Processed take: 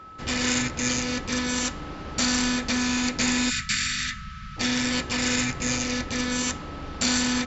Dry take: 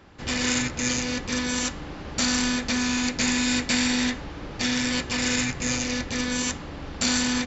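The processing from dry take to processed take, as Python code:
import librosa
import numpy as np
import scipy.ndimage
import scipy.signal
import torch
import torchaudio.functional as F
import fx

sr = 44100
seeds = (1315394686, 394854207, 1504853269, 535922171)

y = x + 10.0 ** (-42.0 / 20.0) * np.sin(2.0 * np.pi * 1300.0 * np.arange(len(x)) / sr)
y = fx.cheby1_bandstop(y, sr, low_hz=210.0, high_hz=1200.0, order=5, at=(3.49, 4.56), fade=0.02)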